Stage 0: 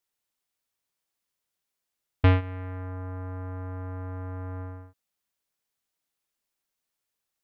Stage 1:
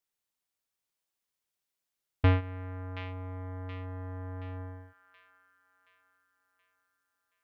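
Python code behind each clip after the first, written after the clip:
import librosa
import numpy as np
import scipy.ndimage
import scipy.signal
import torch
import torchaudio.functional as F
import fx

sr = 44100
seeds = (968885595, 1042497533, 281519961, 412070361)

y = fx.echo_wet_highpass(x, sr, ms=725, feedback_pct=48, hz=1600.0, wet_db=-6.5)
y = y * librosa.db_to_amplitude(-4.0)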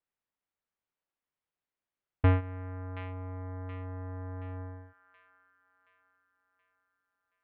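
y = scipy.signal.sosfilt(scipy.signal.butter(2, 2100.0, 'lowpass', fs=sr, output='sos'), x)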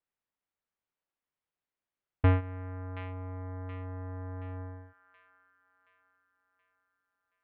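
y = x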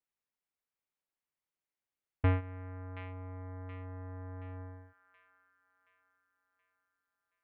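y = fx.peak_eq(x, sr, hz=2200.0, db=3.0, octaves=0.48)
y = y * librosa.db_to_amplitude(-4.5)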